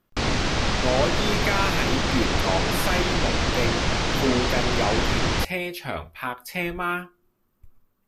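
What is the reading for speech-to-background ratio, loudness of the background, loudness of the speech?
-4.5 dB, -24.0 LUFS, -28.5 LUFS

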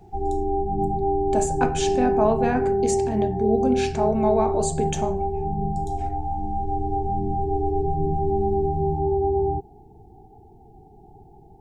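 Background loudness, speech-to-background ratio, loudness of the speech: -24.5 LUFS, -1.0 dB, -25.5 LUFS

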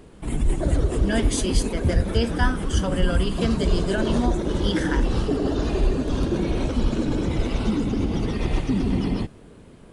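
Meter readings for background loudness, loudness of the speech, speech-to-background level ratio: -25.0 LUFS, -28.0 LUFS, -3.0 dB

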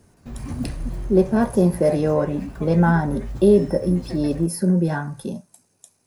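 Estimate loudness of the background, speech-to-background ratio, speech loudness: -34.0 LUFS, 14.0 dB, -20.0 LUFS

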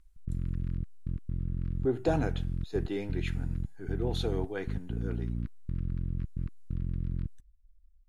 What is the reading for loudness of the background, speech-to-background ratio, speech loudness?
-36.5 LUFS, 1.5 dB, -35.0 LUFS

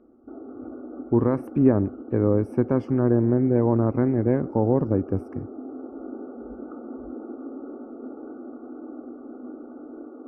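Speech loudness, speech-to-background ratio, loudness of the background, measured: -22.5 LUFS, 16.5 dB, -39.0 LUFS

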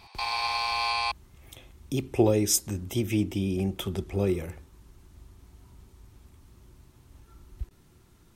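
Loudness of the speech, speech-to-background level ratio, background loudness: -27.5 LUFS, 0.5 dB, -28.0 LUFS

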